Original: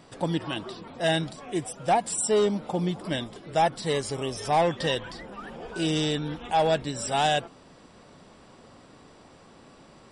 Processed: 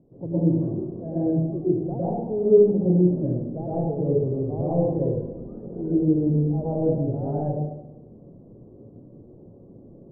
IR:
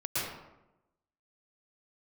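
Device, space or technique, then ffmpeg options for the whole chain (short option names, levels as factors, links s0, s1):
next room: -filter_complex "[0:a]lowpass=f=470:w=0.5412,lowpass=f=470:w=1.3066[s0];[1:a]atrim=start_sample=2205[s1];[s0][s1]afir=irnorm=-1:irlink=0"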